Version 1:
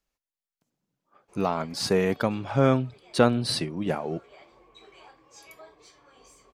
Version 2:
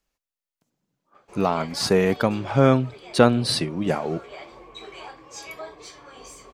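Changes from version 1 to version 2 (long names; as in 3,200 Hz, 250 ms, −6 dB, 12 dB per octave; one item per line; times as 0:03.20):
speech +4.0 dB
background +11.5 dB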